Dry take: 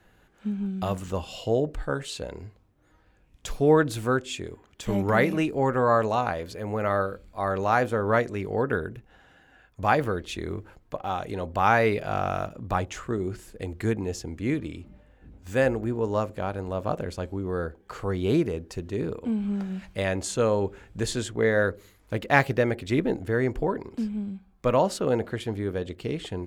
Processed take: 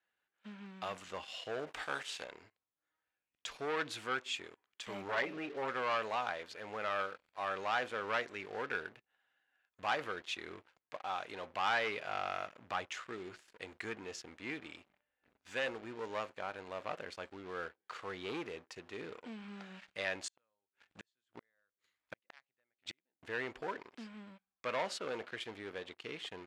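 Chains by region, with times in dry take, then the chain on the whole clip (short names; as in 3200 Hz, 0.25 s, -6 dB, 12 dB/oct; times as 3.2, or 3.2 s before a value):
1.66–2.23 spectral contrast lowered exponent 0.65 + bell 760 Hz +3.5 dB 0.34 oct + notch 4200 Hz
5.08–5.68 formant sharpening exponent 1.5 + comb 7.2 ms, depth 93% + core saturation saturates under 870 Hz
20.16–23.23 bell 430 Hz -6.5 dB 0.34 oct + flipped gate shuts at -21 dBFS, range -32 dB
whole clip: sample leveller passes 3; LPF 2500 Hz 12 dB/oct; differentiator; gain -1.5 dB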